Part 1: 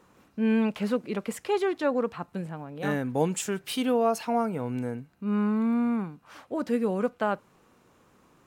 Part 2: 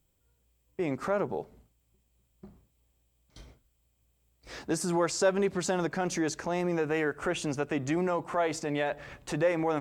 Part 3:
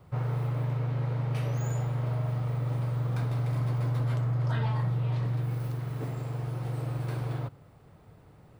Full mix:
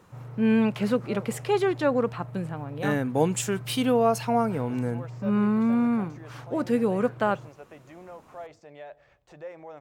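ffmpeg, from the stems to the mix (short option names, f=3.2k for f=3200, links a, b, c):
-filter_complex "[0:a]volume=2.5dB[a];[1:a]deesser=1,equalizer=f=250:t=o:w=0.67:g=-9,equalizer=f=630:t=o:w=0.67:g=7,equalizer=f=10k:t=o:w=0.67:g=-9,volume=-16.5dB[b];[2:a]lowpass=2.5k,volume=-11dB[c];[a][b][c]amix=inputs=3:normalize=0"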